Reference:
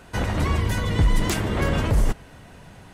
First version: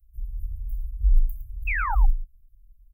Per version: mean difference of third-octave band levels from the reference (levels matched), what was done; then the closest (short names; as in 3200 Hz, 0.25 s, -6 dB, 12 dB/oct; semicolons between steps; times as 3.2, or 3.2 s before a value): 25.5 dB: inverse Chebyshev band-stop 270–4700 Hz, stop band 80 dB; painted sound fall, 1.67–1.95, 750–2700 Hz -29 dBFS; flange 1 Hz, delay 4.4 ms, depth 5.3 ms, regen -49%; on a send: echo 0.111 s -12 dB; on the sum: gain +6 dB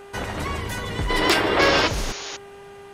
5.5 dB: low shelf 270 Hz -10 dB; painted sound noise, 1.59–2.37, 260–7000 Hz -34 dBFS; buzz 400 Hz, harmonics 8, -43 dBFS -8 dB/oct; spectral gain 1.1–1.87, 260–5600 Hz +10 dB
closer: second